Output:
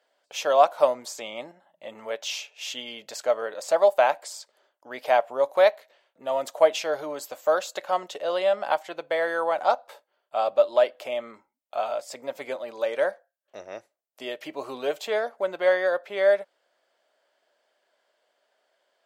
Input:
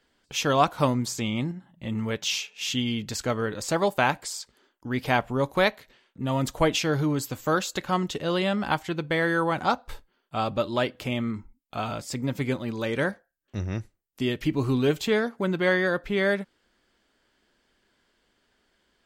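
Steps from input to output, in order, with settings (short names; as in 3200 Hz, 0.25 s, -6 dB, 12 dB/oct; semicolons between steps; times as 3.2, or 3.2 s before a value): resonant high-pass 610 Hz, resonance Q 4.9; gain -4.5 dB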